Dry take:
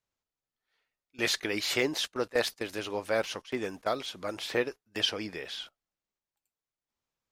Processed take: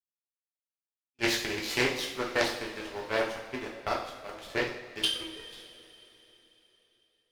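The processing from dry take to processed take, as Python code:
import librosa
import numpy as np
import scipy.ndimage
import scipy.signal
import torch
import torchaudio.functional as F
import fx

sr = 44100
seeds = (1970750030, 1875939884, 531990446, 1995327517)

p1 = fx.sine_speech(x, sr, at=(5.05, 5.49))
p2 = fx.hum_notches(p1, sr, base_hz=60, count=9)
p3 = fx.schmitt(p2, sr, flips_db=-28.0)
p4 = p2 + F.gain(torch.from_numpy(p3), -9.5).numpy()
p5 = fx.power_curve(p4, sr, exponent=2.0)
p6 = fx.echo_bbd(p5, sr, ms=587, stages=2048, feedback_pct=36, wet_db=-24.0)
p7 = fx.rev_double_slope(p6, sr, seeds[0], early_s=0.56, late_s=3.9, knee_db=-18, drr_db=-3.0)
p8 = fx.doppler_dist(p7, sr, depth_ms=0.27)
y = F.gain(torch.from_numpy(p8), 5.5).numpy()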